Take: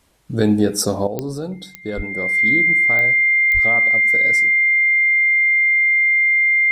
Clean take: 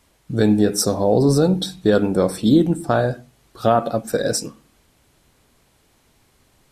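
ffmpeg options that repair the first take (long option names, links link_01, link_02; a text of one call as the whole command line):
ffmpeg -i in.wav -filter_complex "[0:a]adeclick=threshold=4,bandreject=frequency=2100:width=30,asplit=3[link_01][link_02][link_03];[link_01]afade=type=out:start_time=1.96:duration=0.02[link_04];[link_02]highpass=frequency=140:width=0.5412,highpass=frequency=140:width=1.3066,afade=type=in:start_time=1.96:duration=0.02,afade=type=out:start_time=2.08:duration=0.02[link_05];[link_03]afade=type=in:start_time=2.08:duration=0.02[link_06];[link_04][link_05][link_06]amix=inputs=3:normalize=0,asplit=3[link_07][link_08][link_09];[link_07]afade=type=out:start_time=3.53:duration=0.02[link_10];[link_08]highpass=frequency=140:width=0.5412,highpass=frequency=140:width=1.3066,afade=type=in:start_time=3.53:duration=0.02,afade=type=out:start_time=3.65:duration=0.02[link_11];[link_09]afade=type=in:start_time=3.65:duration=0.02[link_12];[link_10][link_11][link_12]amix=inputs=3:normalize=0,asetnsamples=nb_out_samples=441:pad=0,asendcmd='1.07 volume volume 11dB',volume=0dB" out.wav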